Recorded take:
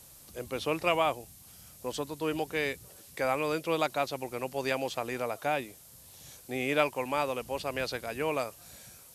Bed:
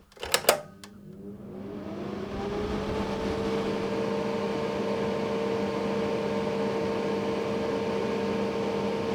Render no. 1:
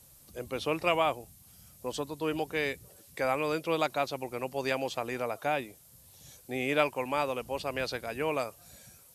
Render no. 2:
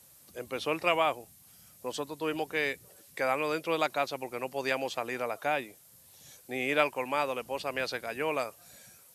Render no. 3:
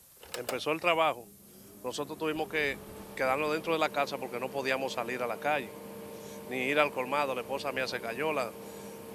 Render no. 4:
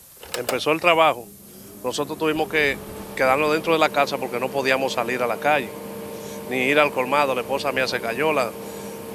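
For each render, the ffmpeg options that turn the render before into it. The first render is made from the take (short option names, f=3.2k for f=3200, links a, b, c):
-af "afftdn=nr=6:nf=-54"
-af "highpass=f=210:p=1,equalizer=f=1.8k:w=1.5:g=3"
-filter_complex "[1:a]volume=-16dB[a];[0:a][a]amix=inputs=2:normalize=0"
-af "volume=10.5dB,alimiter=limit=-2dB:level=0:latency=1"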